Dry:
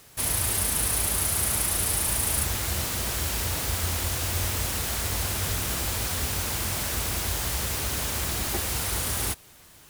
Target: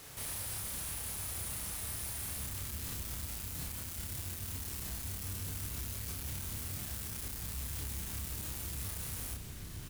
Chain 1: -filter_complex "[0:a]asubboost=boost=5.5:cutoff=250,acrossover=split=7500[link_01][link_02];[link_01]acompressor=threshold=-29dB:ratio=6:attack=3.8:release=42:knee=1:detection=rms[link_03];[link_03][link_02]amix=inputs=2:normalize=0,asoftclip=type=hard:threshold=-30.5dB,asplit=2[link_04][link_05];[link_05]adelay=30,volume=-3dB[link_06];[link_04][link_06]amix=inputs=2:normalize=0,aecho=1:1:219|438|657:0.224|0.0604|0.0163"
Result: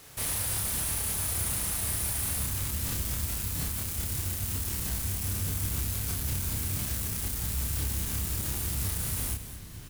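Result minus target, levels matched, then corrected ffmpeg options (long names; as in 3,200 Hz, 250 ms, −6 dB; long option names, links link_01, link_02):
echo-to-direct +9 dB; hard clipping: distortion −4 dB
-filter_complex "[0:a]asubboost=boost=5.5:cutoff=250,acrossover=split=7500[link_01][link_02];[link_01]acompressor=threshold=-29dB:ratio=6:attack=3.8:release=42:knee=1:detection=rms[link_03];[link_03][link_02]amix=inputs=2:normalize=0,asoftclip=type=hard:threshold=-41dB,asplit=2[link_04][link_05];[link_05]adelay=30,volume=-3dB[link_06];[link_04][link_06]amix=inputs=2:normalize=0,aecho=1:1:219|438:0.0794|0.0214"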